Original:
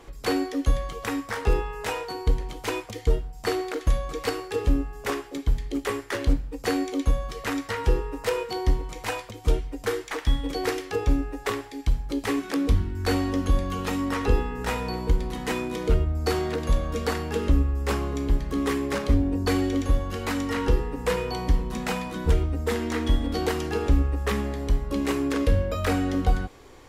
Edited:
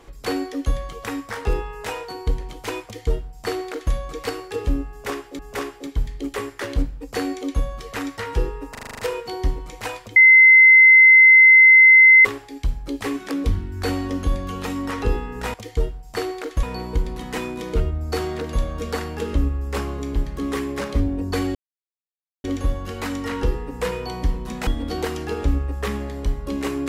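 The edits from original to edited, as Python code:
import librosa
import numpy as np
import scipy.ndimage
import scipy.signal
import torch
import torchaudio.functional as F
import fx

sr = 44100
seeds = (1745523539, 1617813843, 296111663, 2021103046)

y = fx.edit(x, sr, fx.duplicate(start_s=2.84, length_s=1.09, to_s=14.77),
    fx.repeat(start_s=4.9, length_s=0.49, count=2),
    fx.stutter(start_s=8.22, slice_s=0.04, count=8),
    fx.bleep(start_s=9.39, length_s=2.09, hz=2060.0, db=-6.5),
    fx.insert_silence(at_s=19.69, length_s=0.89),
    fx.cut(start_s=21.92, length_s=1.19), tone=tone)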